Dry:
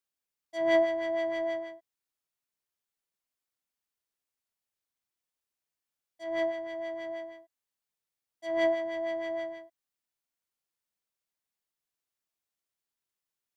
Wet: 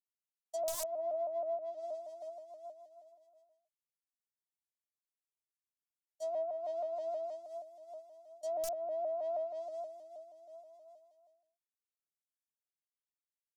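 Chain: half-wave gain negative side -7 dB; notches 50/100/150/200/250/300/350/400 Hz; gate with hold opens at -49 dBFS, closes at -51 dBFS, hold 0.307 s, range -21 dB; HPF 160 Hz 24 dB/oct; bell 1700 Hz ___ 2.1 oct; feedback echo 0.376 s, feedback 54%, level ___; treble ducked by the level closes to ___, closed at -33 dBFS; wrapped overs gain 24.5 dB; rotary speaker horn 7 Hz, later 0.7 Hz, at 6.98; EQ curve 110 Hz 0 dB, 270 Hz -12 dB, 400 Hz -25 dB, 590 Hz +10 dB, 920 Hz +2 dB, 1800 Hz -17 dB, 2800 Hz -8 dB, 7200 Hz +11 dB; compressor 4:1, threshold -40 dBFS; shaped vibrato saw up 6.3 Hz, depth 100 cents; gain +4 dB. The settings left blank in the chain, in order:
-8 dB, -16 dB, 1600 Hz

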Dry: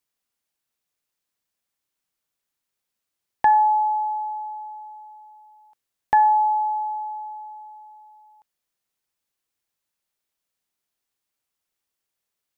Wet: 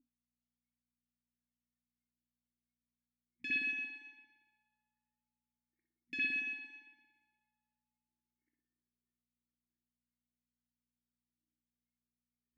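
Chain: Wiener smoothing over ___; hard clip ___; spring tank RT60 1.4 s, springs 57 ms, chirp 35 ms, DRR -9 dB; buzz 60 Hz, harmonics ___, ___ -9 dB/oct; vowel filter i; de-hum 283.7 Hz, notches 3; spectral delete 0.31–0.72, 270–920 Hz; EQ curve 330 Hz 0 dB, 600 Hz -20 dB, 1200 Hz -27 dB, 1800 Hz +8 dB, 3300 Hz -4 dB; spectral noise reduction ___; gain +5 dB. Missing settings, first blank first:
15 samples, -20.5 dBFS, 4, -54 dBFS, 24 dB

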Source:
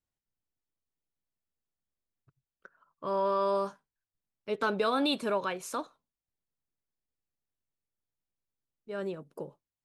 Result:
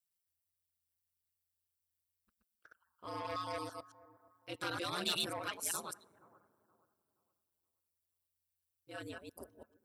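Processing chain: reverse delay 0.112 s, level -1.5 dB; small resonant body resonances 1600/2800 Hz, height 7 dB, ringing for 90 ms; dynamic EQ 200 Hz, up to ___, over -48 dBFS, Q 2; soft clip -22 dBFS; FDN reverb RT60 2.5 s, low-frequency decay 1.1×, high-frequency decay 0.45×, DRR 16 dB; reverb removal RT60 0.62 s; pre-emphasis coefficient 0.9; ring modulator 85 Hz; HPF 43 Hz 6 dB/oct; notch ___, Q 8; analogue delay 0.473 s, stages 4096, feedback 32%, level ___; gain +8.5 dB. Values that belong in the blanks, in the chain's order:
+6 dB, 6600 Hz, -20.5 dB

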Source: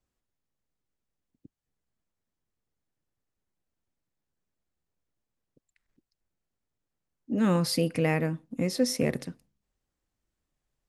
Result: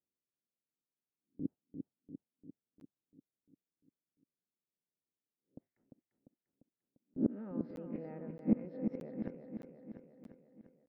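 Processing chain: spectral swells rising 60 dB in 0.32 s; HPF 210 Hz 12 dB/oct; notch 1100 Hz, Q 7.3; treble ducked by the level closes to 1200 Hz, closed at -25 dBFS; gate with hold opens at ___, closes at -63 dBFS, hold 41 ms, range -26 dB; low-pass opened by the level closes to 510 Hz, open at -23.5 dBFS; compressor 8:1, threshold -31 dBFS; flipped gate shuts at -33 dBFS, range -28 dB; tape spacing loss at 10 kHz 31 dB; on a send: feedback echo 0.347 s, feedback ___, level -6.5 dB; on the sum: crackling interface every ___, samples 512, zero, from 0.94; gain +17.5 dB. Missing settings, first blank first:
-54 dBFS, 59%, 0.62 s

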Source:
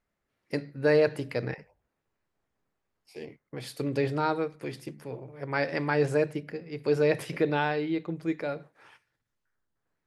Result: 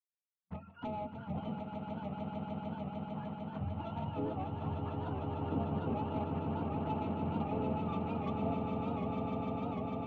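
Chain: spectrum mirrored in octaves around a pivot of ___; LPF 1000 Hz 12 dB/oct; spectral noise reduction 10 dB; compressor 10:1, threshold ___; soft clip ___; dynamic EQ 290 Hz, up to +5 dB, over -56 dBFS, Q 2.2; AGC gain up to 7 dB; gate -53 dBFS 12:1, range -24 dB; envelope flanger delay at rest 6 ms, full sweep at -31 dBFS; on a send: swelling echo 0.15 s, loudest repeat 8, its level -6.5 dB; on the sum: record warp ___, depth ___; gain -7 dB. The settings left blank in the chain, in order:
620 Hz, -32 dBFS, -32.5 dBFS, 78 rpm, 100 cents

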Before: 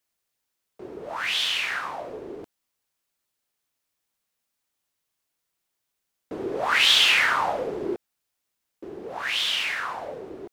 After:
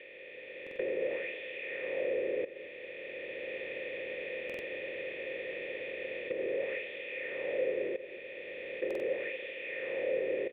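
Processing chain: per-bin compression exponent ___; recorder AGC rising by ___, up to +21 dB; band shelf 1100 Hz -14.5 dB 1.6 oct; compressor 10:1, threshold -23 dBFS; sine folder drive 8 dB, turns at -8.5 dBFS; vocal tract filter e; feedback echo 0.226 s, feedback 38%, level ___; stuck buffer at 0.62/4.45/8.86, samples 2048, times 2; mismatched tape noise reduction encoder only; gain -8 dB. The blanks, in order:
0.4, 14 dB/s, -14.5 dB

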